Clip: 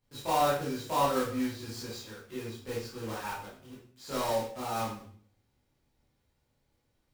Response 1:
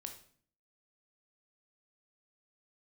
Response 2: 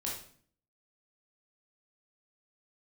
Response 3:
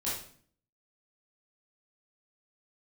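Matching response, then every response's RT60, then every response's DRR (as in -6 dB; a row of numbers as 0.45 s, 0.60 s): 3; 0.50 s, 0.50 s, 0.50 s; 4.5 dB, -4.0 dB, -9.0 dB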